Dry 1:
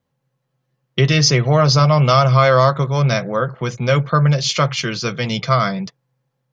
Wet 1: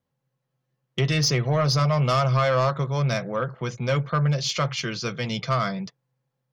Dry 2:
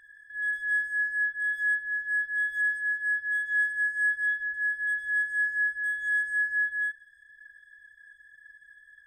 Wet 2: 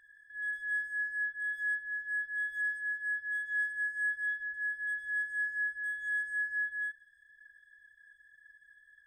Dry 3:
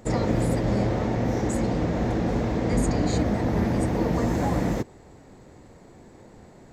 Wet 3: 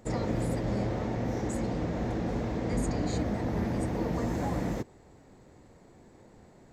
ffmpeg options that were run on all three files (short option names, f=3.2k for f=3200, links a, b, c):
-af "asoftclip=type=tanh:threshold=-7dB,volume=-6.5dB"